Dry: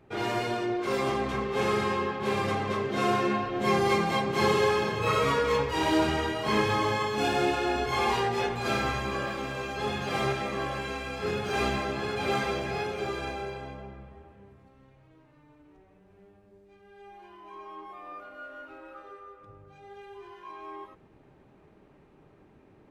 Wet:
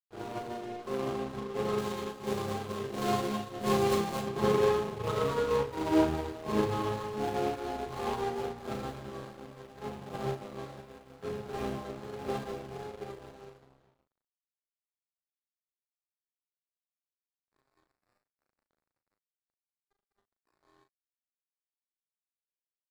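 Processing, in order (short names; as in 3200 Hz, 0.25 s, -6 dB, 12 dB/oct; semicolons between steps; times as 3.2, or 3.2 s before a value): median filter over 25 samples; 1.78–4.29 high shelf 4100 Hz +9.5 dB; crossover distortion -41.5 dBFS; doubler 38 ms -7 dB; upward expander 1.5:1, over -49 dBFS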